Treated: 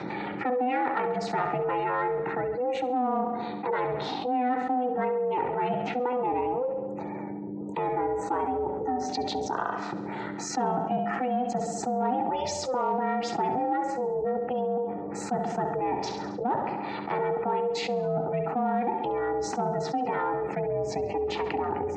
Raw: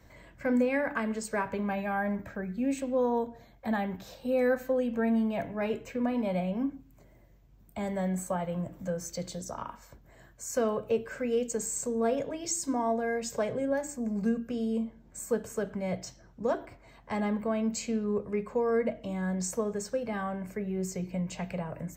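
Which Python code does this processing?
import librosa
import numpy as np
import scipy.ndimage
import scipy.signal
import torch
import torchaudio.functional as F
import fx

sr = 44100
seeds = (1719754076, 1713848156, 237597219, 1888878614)

p1 = fx.spec_gate(x, sr, threshold_db=-30, keep='strong')
p2 = fx.high_shelf(p1, sr, hz=2700.0, db=-6.5)
p3 = fx.notch(p2, sr, hz=820.0, q=12.0)
p4 = 10.0 ** (-28.0 / 20.0) * np.tanh(p3 / 10.0 ** (-28.0 / 20.0))
p5 = p3 + (p4 * 10.0 ** (-6.5 / 20.0))
p6 = p5 * np.sin(2.0 * np.pi * 250.0 * np.arange(len(p5)) / sr)
p7 = p6 + fx.echo_feedback(p6, sr, ms=68, feedback_pct=54, wet_db=-12.5, dry=0)
p8 = (np.kron(p7[::2], np.eye(2)[0]) * 2)[:len(p7)]
p9 = fx.cabinet(p8, sr, low_hz=120.0, low_slope=24, high_hz=4700.0, hz=(130.0, 870.0, 3700.0), db=(-4, 7, 6))
p10 = fx.env_flatten(p9, sr, amount_pct=70)
y = p10 * 10.0 ** (-2.5 / 20.0)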